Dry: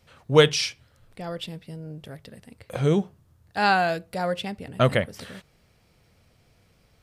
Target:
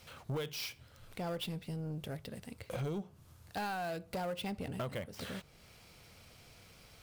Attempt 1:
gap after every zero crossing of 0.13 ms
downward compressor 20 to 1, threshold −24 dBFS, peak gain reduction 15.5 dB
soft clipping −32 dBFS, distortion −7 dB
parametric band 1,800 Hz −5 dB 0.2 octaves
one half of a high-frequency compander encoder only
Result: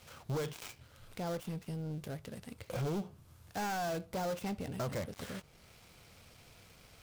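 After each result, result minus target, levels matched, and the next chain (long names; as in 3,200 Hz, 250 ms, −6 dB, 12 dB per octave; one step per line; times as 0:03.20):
downward compressor: peak gain reduction −6 dB; gap after every zero crossing: distortion +9 dB
gap after every zero crossing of 0.13 ms
downward compressor 20 to 1, threshold −30.5 dBFS, peak gain reduction 21.5 dB
soft clipping −32 dBFS, distortion −12 dB
parametric band 1,800 Hz −5 dB 0.2 octaves
one half of a high-frequency compander encoder only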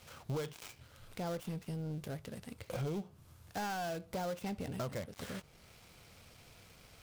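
gap after every zero crossing: distortion +9 dB
gap after every zero crossing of 0.04 ms
downward compressor 20 to 1, threshold −30.5 dBFS, peak gain reduction 22 dB
soft clipping −32 dBFS, distortion −12 dB
parametric band 1,800 Hz −5 dB 0.2 octaves
one half of a high-frequency compander encoder only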